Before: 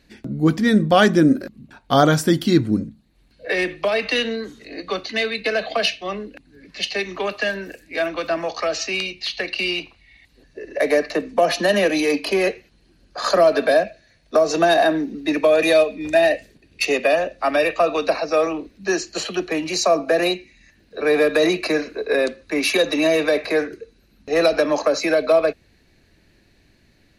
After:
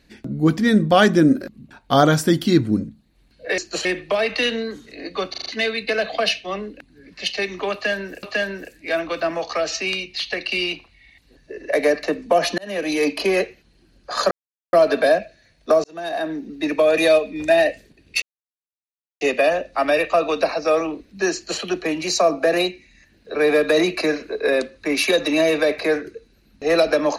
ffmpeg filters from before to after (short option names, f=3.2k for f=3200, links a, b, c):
-filter_complex "[0:a]asplit=12[a][b][c][d][e][f][g][h][i][j][k][l];[a]atrim=end=3.582[m];[b]atrim=start=18.998:end=19.272[n];[c]atrim=start=3.578:end=5.072[o];[d]atrim=start=5.028:end=5.072[p];[e]atrim=start=5.028:end=5.072[q];[f]atrim=start=5.028:end=5.072[r];[g]atrim=start=5.028:end=7.802[s];[h]atrim=start=7.298:end=11.65,asetpts=PTS-STARTPTS,afade=t=out:st=4.348:d=0.004:c=hsin[t];[i]atrim=start=11.65:end=13.38,asetpts=PTS-STARTPTS,afade=t=in:d=0.45,afade=t=out:st=1.726:d=0.004:c=hsin,apad=pad_dur=0.42[u];[j]atrim=start=13.38:end=14.49,asetpts=PTS-STARTPTS,afade=t=in:d=0.004:c=hsin,afade=t=out:st=1.106:d=0.004:c=hsin[v];[k]atrim=start=14.49:end=16.87,asetpts=PTS-STARTPTS,afade=t=in:d=1.41:c=qsin,afade=t=out:st=2.376:d=0.004:c=hsin,apad=pad_dur=0.99[w];[l]atrim=start=16.87,asetpts=PTS-STARTPTS,afade=t=in:d=0.004:c=hsin[x];[m][n]acrossfade=d=0.004:c1=hsin:c2=hsin[y];[y][o]acrossfade=d=0.004:c1=hsin:c2=hsin[z];[z][p]acrossfade=d=0.004:c1=hsin:c2=hsin[aa];[aa][q]acrossfade=d=0.004:c1=hsin:c2=hsin[ab];[ab][r]acrossfade=d=0.004:c1=hsin:c2=hsin[ac];[ac][s]acrossfade=d=0.004:c1=hsin:c2=hsin[ad];[t][u][v][w][x]concat=n=5:v=0:a=1[ae];[ad][ae]acrossfade=d=0.004:c1=hsin:c2=hsin"